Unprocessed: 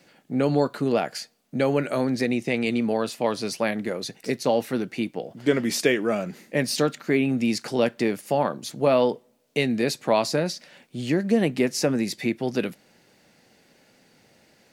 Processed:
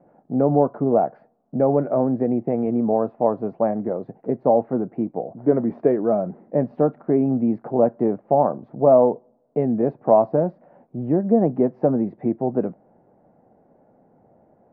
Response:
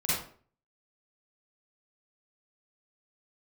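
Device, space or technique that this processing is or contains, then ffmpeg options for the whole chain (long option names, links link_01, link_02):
under water: -af "lowpass=frequency=980:width=0.5412,lowpass=frequency=980:width=1.3066,equalizer=frequency=700:width_type=o:width=0.46:gain=6,volume=3dB"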